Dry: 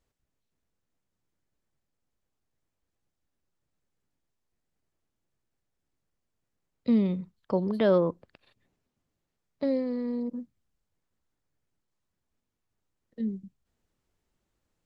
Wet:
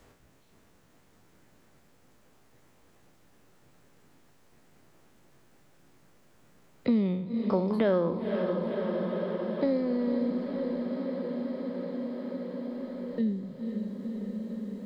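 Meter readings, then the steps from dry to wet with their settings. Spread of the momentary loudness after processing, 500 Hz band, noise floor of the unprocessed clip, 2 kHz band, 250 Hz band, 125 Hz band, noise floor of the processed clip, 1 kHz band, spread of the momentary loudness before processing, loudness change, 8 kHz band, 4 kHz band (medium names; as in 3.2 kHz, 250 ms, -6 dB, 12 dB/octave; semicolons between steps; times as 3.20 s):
10 LU, +1.5 dB, -83 dBFS, +2.5 dB, +2.0 dB, +1.5 dB, -61 dBFS, +2.5 dB, 13 LU, -2.5 dB, no reading, +1.0 dB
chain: spectral sustain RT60 0.49 s; echo that smears into a reverb 524 ms, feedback 71%, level -9.5 dB; three bands compressed up and down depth 70%; trim +2 dB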